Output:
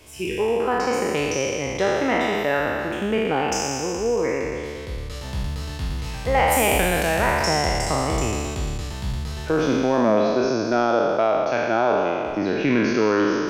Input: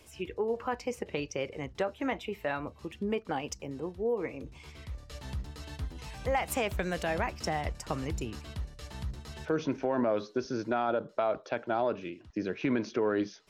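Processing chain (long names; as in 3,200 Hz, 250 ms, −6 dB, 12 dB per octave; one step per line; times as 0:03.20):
peak hold with a decay on every bin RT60 2.54 s
level +6.5 dB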